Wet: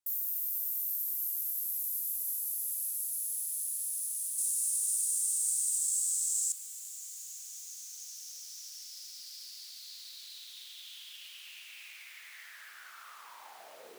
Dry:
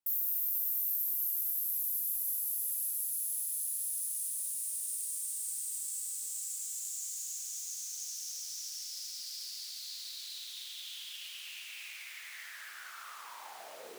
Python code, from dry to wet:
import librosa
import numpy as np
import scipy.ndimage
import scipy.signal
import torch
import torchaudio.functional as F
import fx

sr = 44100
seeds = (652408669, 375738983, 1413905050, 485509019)

y = fx.peak_eq(x, sr, hz=7400.0, db=fx.steps((0.0, 5.5), (4.38, 12.5), (6.52, -2.0)), octaves=1.4)
y = F.gain(torch.from_numpy(y), -3.0).numpy()